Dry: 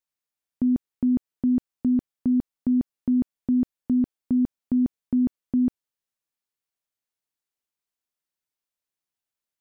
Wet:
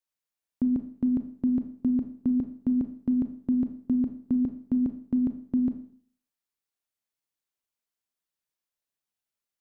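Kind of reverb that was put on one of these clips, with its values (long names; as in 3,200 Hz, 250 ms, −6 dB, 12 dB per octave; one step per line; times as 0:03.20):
four-comb reverb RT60 0.53 s, combs from 27 ms, DRR 7.5 dB
level −2 dB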